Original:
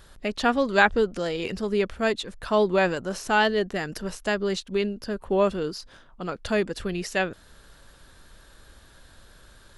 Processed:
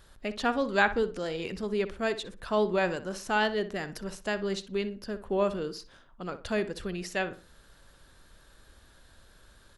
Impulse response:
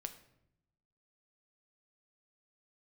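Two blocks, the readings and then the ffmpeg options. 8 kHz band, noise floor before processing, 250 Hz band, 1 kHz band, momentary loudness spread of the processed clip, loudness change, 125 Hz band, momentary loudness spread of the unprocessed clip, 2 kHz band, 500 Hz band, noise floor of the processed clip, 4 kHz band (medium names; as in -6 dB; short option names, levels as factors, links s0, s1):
-5.5 dB, -53 dBFS, -5.0 dB, -5.5 dB, 12 LU, -5.5 dB, -5.0 dB, 11 LU, -5.5 dB, -5.0 dB, -58 dBFS, -5.5 dB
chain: -filter_complex "[0:a]asplit=2[s0][s1];[s1]adelay=61,lowpass=f=2400:p=1,volume=0.251,asplit=2[s2][s3];[s3]adelay=61,lowpass=f=2400:p=1,volume=0.32,asplit=2[s4][s5];[s5]adelay=61,lowpass=f=2400:p=1,volume=0.32[s6];[s0][s2][s4][s6]amix=inputs=4:normalize=0,volume=0.531"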